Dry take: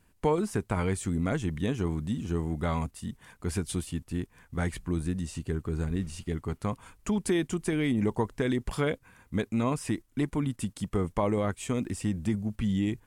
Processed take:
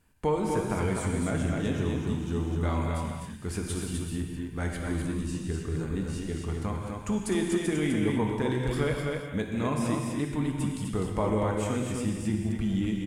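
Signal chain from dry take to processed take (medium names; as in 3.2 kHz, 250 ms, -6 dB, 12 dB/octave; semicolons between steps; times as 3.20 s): delay 253 ms -4 dB; gated-style reverb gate 260 ms flat, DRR 1.5 dB; trim -2.5 dB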